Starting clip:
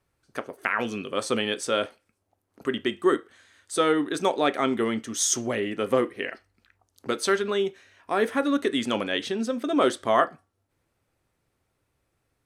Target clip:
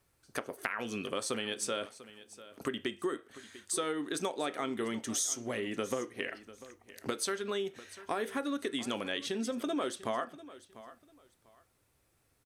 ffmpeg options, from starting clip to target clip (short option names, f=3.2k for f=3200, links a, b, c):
-filter_complex "[0:a]highshelf=f=4.8k:g=8.5,acompressor=threshold=-32dB:ratio=6,asplit=2[a][b];[b]aecho=0:1:695|1390:0.141|0.0325[c];[a][c]amix=inputs=2:normalize=0"